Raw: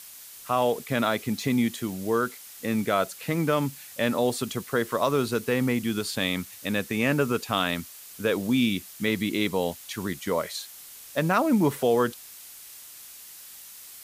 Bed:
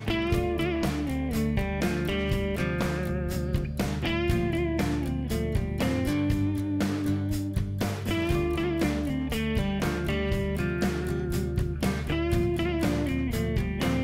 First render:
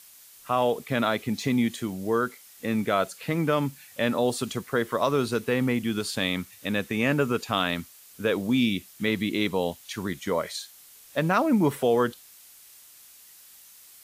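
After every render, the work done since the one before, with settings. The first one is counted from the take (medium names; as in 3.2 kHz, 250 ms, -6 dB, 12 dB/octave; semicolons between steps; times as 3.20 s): noise print and reduce 6 dB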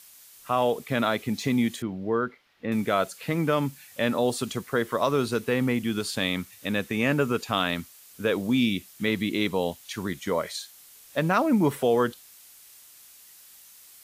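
1.82–2.72 s: distance through air 330 m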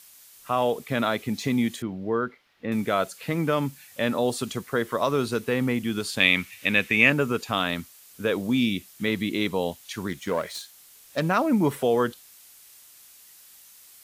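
6.20–7.10 s: peaking EQ 2.4 kHz +13.5 dB 0.94 oct; 10.08–11.21 s: self-modulated delay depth 0.11 ms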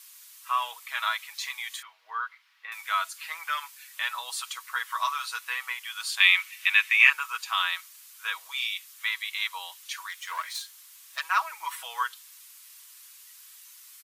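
elliptic high-pass 1 kHz, stop band 80 dB; comb 6.2 ms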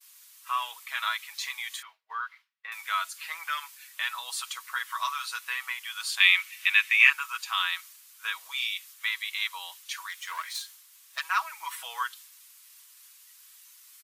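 expander -46 dBFS; dynamic bell 530 Hz, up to -7 dB, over -44 dBFS, Q 0.79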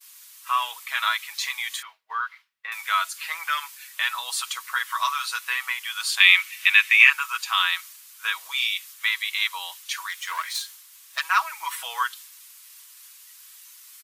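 trim +6 dB; peak limiter -1 dBFS, peak gain reduction 3 dB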